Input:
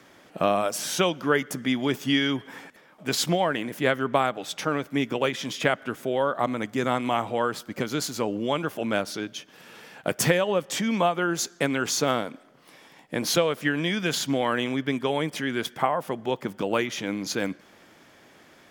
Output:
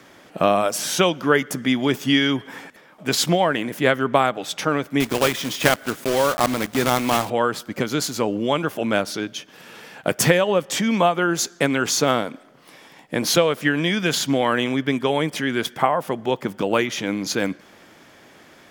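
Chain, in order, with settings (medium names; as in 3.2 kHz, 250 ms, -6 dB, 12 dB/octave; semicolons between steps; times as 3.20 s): 5.00–7.31 s: block-companded coder 3-bit; trim +5 dB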